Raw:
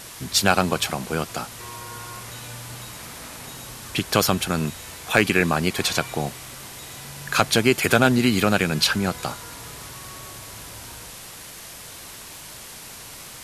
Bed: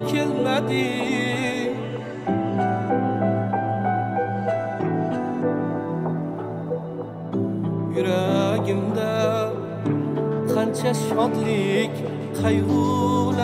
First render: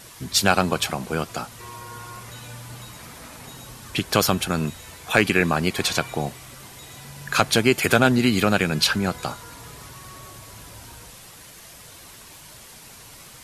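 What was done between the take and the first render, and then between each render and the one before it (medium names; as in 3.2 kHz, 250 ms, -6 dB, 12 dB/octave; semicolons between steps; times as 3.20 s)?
noise reduction 6 dB, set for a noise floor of -40 dBFS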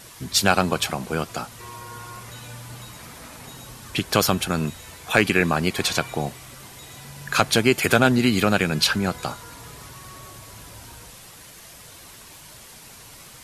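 no audible change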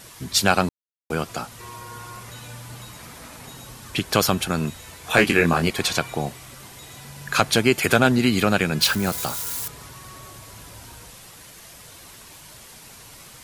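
0.69–1.10 s: mute; 5.02–5.70 s: doubling 24 ms -4.5 dB; 8.81–9.68 s: zero-crossing glitches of -22.5 dBFS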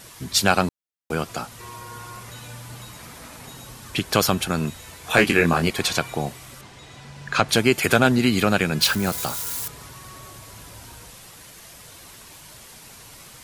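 6.61–7.49 s: distance through air 84 m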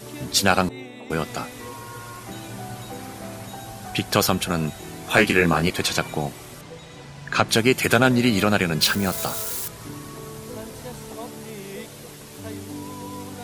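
add bed -15.5 dB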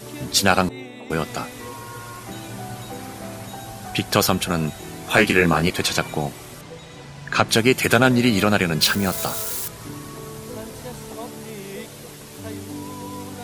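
trim +1.5 dB; peak limiter -2 dBFS, peak gain reduction 1 dB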